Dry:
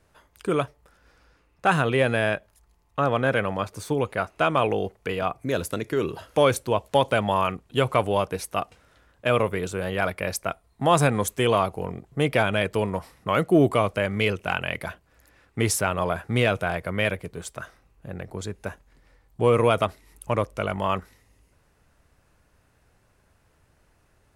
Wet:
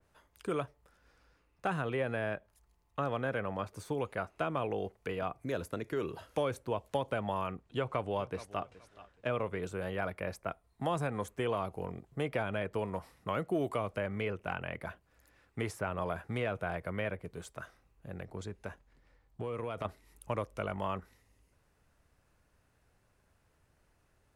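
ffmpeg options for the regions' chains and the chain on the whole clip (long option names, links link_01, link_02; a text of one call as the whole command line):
ffmpeg -i in.wav -filter_complex "[0:a]asettb=1/sr,asplit=3[link_01][link_02][link_03];[link_01]atrim=end=7.624[link_04];[link_02]atrim=start=7.62:end=9.62,asetpts=PTS-STARTPTS,afade=type=in:duration=0.004:curve=qsin,afade=type=out:start_time=1.996:duration=0.004:curve=qsin,lowpass=7500,aecho=1:1:423|846:0.1|0.023,atrim=end_sample=88200[link_05];[link_03]atrim=start=9.616[link_06];[link_04][link_05]acrossfade=duration=0.004:curve1=hsin:curve2=qsin[link_07];[link_07][link_06]acrossfade=duration=0.004:curve1=qsin:curve2=hsin,asettb=1/sr,asplit=3[link_08][link_09][link_10];[link_08]atrim=end=18.254[link_11];[link_09]atrim=start=18.25:end=19.85,asetpts=PTS-STARTPTS,afade=type=in:duration=0.004:curve=qsin,afade=type=out:start_time=1.596:duration=0.004:curve=qsin,highshelf=frequency=8400:gain=-9.5,acompressor=threshold=-25dB:ratio=6:attack=3.2:release=140:knee=1:detection=peak[link_12];[link_10]atrim=start=19.846[link_13];[link_11][link_12]acrossfade=duration=0.004:curve1=hsin:curve2=qsin[link_14];[link_14][link_13]acrossfade=duration=0.004:curve1=qsin:curve2=hsin,acrossover=split=450|2100[link_15][link_16][link_17];[link_15]acompressor=threshold=-27dB:ratio=4[link_18];[link_16]acompressor=threshold=-25dB:ratio=4[link_19];[link_17]acompressor=threshold=-42dB:ratio=4[link_20];[link_18][link_19][link_20]amix=inputs=3:normalize=0,adynamicequalizer=threshold=0.00794:dfrequency=2700:dqfactor=0.7:tfrequency=2700:tqfactor=0.7:attack=5:release=100:ratio=0.375:range=2:mode=cutabove:tftype=highshelf,volume=-8dB" out.wav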